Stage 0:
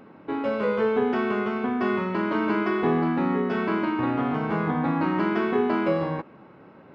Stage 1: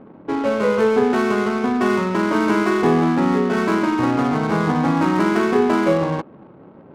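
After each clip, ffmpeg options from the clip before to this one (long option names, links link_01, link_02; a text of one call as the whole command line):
ffmpeg -i in.wav -af "adynamicsmooth=sensitivity=8:basefreq=610,volume=6.5dB" out.wav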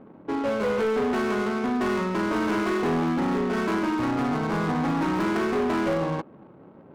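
ffmpeg -i in.wav -af "asoftclip=type=hard:threshold=-16dB,volume=-5dB" out.wav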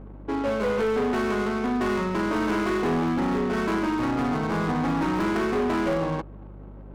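ffmpeg -i in.wav -af "aeval=exprs='val(0)+0.00891*(sin(2*PI*50*n/s)+sin(2*PI*2*50*n/s)/2+sin(2*PI*3*50*n/s)/3+sin(2*PI*4*50*n/s)/4+sin(2*PI*5*50*n/s)/5)':channel_layout=same" out.wav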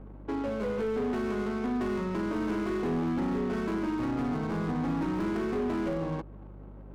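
ffmpeg -i in.wav -filter_complex "[0:a]acrossover=split=470[link_01][link_02];[link_02]acompressor=threshold=-34dB:ratio=5[link_03];[link_01][link_03]amix=inputs=2:normalize=0,volume=-4dB" out.wav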